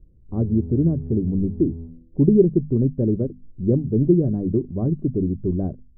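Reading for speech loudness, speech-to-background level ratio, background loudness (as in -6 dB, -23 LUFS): -21.5 LUFS, 14.5 dB, -36.0 LUFS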